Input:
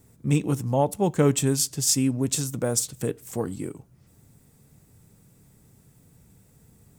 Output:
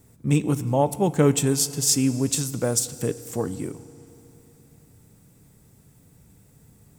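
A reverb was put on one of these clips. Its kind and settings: FDN reverb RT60 3.3 s, high-frequency decay 1×, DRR 15 dB; trim +1.5 dB

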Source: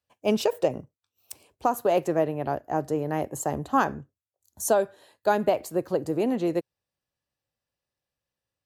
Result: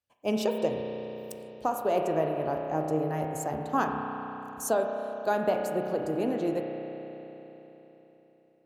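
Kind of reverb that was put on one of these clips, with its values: spring tank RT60 3.8 s, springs 32 ms, chirp 70 ms, DRR 2 dB; trim -5 dB

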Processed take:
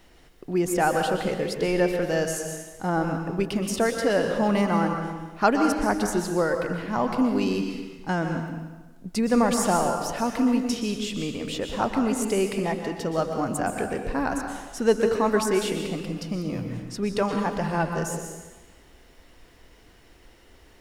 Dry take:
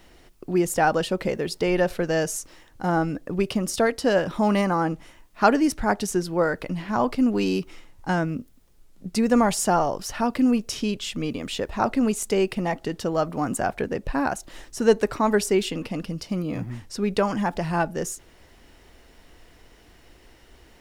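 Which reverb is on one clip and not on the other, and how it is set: plate-style reverb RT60 1.2 s, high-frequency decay 0.9×, pre-delay 110 ms, DRR 4 dB; trim -2.5 dB

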